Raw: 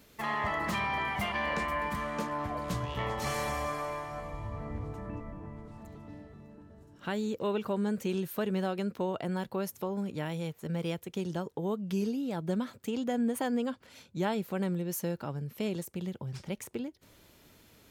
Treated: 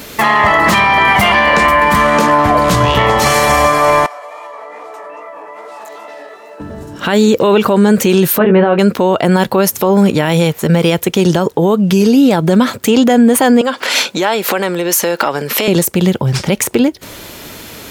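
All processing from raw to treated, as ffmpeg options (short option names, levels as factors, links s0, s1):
-filter_complex "[0:a]asettb=1/sr,asplit=3[s0][s1][s2];[s0]atrim=end=4.064[s3];[s1]atrim=start=4.06:end=6.6,asetpts=PTS-STARTPTS,afade=t=in:d=0.004:c=qsin,afade=t=out:st=2.536:d=0.004:c=qsin,highpass=f=490:w=0.5412,highpass=f=490:w=1.3066,flanger=delay=15:depth=5.3:speed=2.4,acompressor=threshold=0.00178:ratio=12:attack=3.2:release=140:knee=1:detection=peak[s4];[s2]atrim=start=6.596[s5];[s3][s4]acrossfade=d=0.004:c1=hsin:c2=qsin[s6];[s6][s5]acrossfade=d=0.004:c1=qsin:c2=hsin,asettb=1/sr,asplit=3[s7][s8][s9];[s7]atrim=end=8.384[s10];[s8]atrim=start=8.38:end=8.79,asetpts=PTS-STARTPTS,afade=t=in:d=0.004:c=qsin,afade=t=out:st=0.406:d=0.004:c=qsin,lowpass=f=2800:w=0.5412,lowpass=f=2800:w=1.3066,aemphasis=mode=reproduction:type=75kf,asplit=2[s11][s12];[s12]adelay=18,volume=0.501[s13];[s11][s13]amix=inputs=2:normalize=0,atrim=end_sample=18081[s14];[s9]atrim=start=8.786[s15];[s10][s14]acrossfade=d=0.004:c1=hsin:c2=qsin[s16];[s16][s15]acrossfade=d=0.004:c1=qsin:c2=hsin,asettb=1/sr,asplit=3[s17][s18][s19];[s17]atrim=end=13.614[s20];[s18]atrim=start=13.61:end=15.68,asetpts=PTS-STARTPTS,afade=t=in:d=0.004:c=qsin,afade=t=out:st=2.066:d=0.004:c=qsin,highpass=230,acompressor=threshold=0.00501:ratio=8:attack=3.2:release=140:knee=1:detection=peak,asplit=2[s21][s22];[s22]highpass=f=720:p=1,volume=7.94,asoftclip=type=tanh:threshold=0.0708[s23];[s21][s23]amix=inputs=2:normalize=0,lowpass=f=6700:p=1,volume=0.501[s24];[s19]atrim=start=15.676[s25];[s20][s24]acrossfade=d=0.004:c1=hsin:c2=qsin[s26];[s26][s25]acrossfade=d=0.004:c1=qsin:c2=hsin,lowshelf=f=220:g=-7,alimiter=level_in=33.5:limit=0.891:release=50:level=0:latency=1,volume=0.891"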